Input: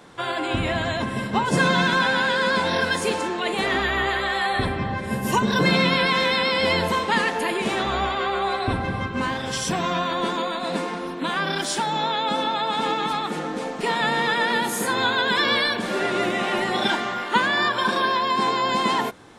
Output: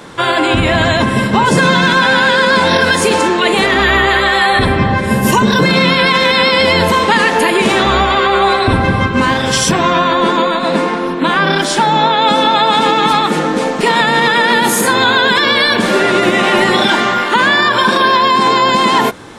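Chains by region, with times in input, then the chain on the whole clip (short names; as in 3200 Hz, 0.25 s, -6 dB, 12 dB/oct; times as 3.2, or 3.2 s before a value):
9.71–12.22 high shelf 4100 Hz -8.5 dB + notches 60/120/180/240/300/360/420/480/540 Hz
whole clip: notch 730 Hz, Q 12; maximiser +15 dB; gain -1 dB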